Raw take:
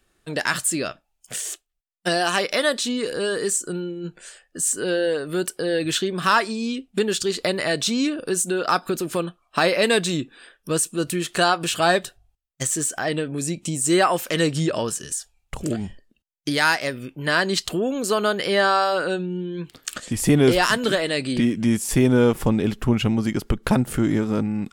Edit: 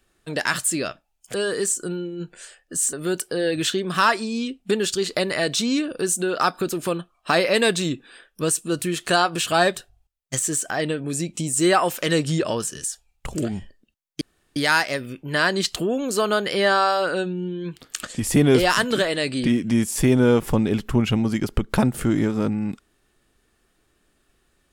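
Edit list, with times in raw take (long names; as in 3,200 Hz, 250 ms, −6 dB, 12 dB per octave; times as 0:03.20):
0:01.34–0:03.18: remove
0:04.77–0:05.21: remove
0:16.49: splice in room tone 0.35 s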